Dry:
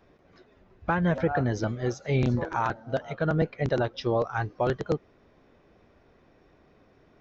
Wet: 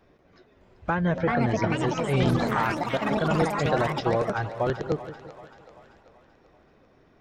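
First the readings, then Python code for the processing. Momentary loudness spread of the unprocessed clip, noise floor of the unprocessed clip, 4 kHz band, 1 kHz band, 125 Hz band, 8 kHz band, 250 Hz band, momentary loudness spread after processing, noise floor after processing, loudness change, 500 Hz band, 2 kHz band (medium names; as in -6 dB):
6 LU, -61 dBFS, +6.0 dB, +4.0 dB, +1.0 dB, no reading, +3.0 dB, 8 LU, -60 dBFS, +2.5 dB, +2.0 dB, +3.5 dB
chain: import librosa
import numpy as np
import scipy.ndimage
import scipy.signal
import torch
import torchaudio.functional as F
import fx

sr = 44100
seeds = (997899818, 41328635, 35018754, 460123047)

y = fx.echo_pitch(x, sr, ms=610, semitones=5, count=3, db_per_echo=-3.0)
y = fx.echo_split(y, sr, split_hz=590.0, low_ms=172, high_ms=386, feedback_pct=52, wet_db=-13.0)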